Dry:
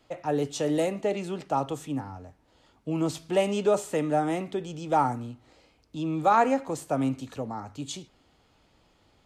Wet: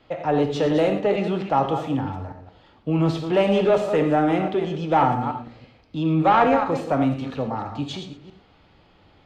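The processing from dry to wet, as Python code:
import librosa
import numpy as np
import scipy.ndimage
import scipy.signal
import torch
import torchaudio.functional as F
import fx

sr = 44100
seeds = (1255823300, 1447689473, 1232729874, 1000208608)

y = fx.reverse_delay(x, sr, ms=166, wet_db=-10)
y = fx.high_shelf(y, sr, hz=3100.0, db=11.0)
y = 10.0 ** (-18.0 / 20.0) * np.tanh(y / 10.0 ** (-18.0 / 20.0))
y = fx.air_absorb(y, sr, metres=350.0)
y = fx.rev_gated(y, sr, seeds[0], gate_ms=140, shape='flat', drr_db=6.0)
y = y * 10.0 ** (7.5 / 20.0)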